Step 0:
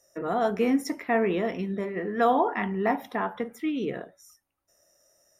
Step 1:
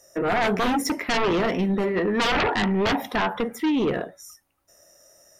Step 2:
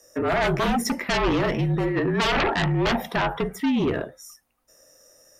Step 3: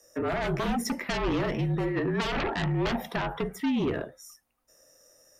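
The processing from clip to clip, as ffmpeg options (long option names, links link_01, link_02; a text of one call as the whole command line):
ffmpeg -i in.wav -af "aeval=exprs='0.299*sin(PI/2*5.01*val(0)/0.299)':channel_layout=same,volume=-8dB" out.wav
ffmpeg -i in.wav -af "afreqshift=-43" out.wav
ffmpeg -i in.wav -filter_complex "[0:a]acrossover=split=410[link_01][link_02];[link_02]acompressor=threshold=-24dB:ratio=6[link_03];[link_01][link_03]amix=inputs=2:normalize=0,volume=-4.5dB" out.wav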